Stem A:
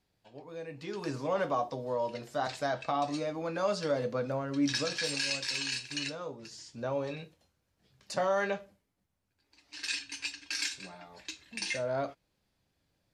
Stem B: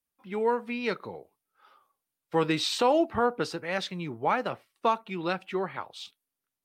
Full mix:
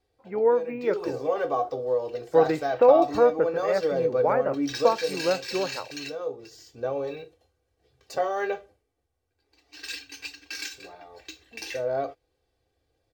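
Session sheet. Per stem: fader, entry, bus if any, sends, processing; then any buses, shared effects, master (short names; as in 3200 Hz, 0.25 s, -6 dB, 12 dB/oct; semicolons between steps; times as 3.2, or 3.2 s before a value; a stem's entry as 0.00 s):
-2.5 dB, 0.00 s, no send, bell 67 Hz +5.5 dB 1 oct; comb 2.6 ms, depth 77%
-3.0 dB, 0.00 s, no send, steep low-pass 2200 Hz 36 dB/oct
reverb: off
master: bell 530 Hz +13.5 dB 0.66 oct; decimation joined by straight lines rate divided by 2×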